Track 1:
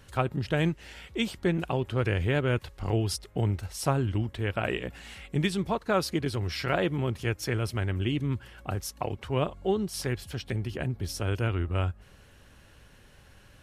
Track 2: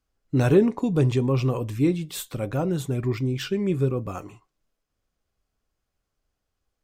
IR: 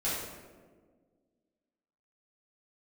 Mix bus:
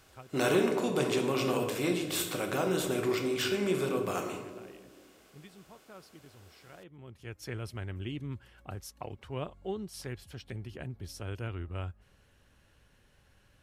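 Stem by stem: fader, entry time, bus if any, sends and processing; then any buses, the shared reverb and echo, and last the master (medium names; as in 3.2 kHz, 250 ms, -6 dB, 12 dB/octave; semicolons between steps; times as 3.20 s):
-9.5 dB, 0.00 s, no send, auto duck -16 dB, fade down 0.25 s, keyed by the second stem
-3.5 dB, 0.00 s, send -9 dB, spectral levelling over time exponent 0.6; high-pass 940 Hz 6 dB/octave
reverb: on, RT60 1.6 s, pre-delay 5 ms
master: none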